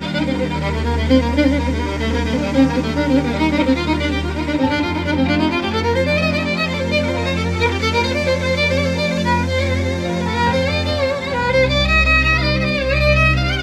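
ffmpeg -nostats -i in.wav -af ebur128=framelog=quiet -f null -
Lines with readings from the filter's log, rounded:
Integrated loudness:
  I:         -16.9 LUFS
  Threshold: -26.9 LUFS
Loudness range:
  LRA:         2.1 LU
  Threshold: -37.2 LUFS
  LRA low:   -17.8 LUFS
  LRA high:  -15.7 LUFS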